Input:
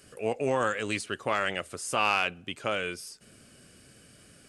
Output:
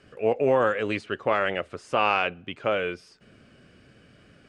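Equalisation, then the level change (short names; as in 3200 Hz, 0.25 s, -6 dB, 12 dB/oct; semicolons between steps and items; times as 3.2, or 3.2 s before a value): LPF 2900 Hz 12 dB/oct; dynamic EQ 500 Hz, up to +5 dB, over -39 dBFS, Q 1.2; +2.5 dB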